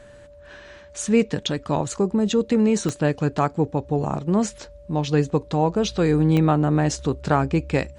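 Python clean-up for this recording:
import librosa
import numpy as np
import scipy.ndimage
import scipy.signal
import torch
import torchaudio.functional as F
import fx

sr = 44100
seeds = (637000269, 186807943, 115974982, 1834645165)

y = fx.fix_declick_ar(x, sr, threshold=10.0)
y = fx.notch(y, sr, hz=580.0, q=30.0)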